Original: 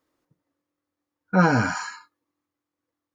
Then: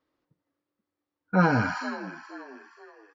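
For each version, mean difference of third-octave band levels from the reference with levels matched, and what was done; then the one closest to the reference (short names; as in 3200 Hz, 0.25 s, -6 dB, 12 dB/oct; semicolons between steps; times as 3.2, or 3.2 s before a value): 3.5 dB: LPF 5000 Hz 24 dB/oct; on a send: frequency-shifting echo 0.479 s, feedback 39%, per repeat +69 Hz, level -14 dB; on the sum: gain -3 dB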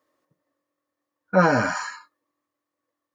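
1.5 dB: HPF 180 Hz 6 dB/oct; small resonant body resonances 590/1100/1800 Hz, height 11 dB, ringing for 40 ms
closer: second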